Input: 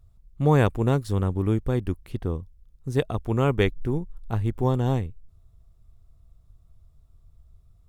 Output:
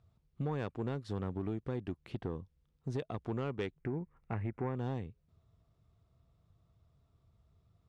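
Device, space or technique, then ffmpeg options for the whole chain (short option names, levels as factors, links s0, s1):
AM radio: -filter_complex "[0:a]highpass=130,lowpass=4400,acompressor=threshold=0.0316:ratio=6,asoftclip=type=tanh:threshold=0.0473,asettb=1/sr,asplit=3[s0][s1][s2];[s0]atrim=end=3.794[s3];[s1]atrim=start=3.79:end=4.76,asetpts=PTS-STARTPTS,afade=t=in:d=0.004:c=qsin,afade=t=out:st=0.966:d=0.004:c=qsin,highshelf=f=2800:t=q:w=3:g=-8[s4];[s2]atrim=start=4.756[s5];[s3][s4]acrossfade=d=0.004:c1=hsin:c2=qsin[s6];[s6][s5]acrossfade=d=0.004:c1=qsin:c2=hsin,volume=0.841"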